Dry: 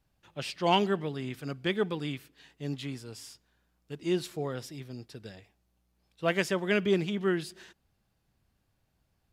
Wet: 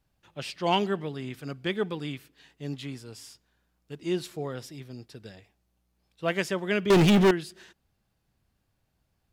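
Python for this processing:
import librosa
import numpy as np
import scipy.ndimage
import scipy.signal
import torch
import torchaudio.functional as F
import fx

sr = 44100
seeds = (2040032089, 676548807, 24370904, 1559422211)

y = fx.leveller(x, sr, passes=5, at=(6.9, 7.31))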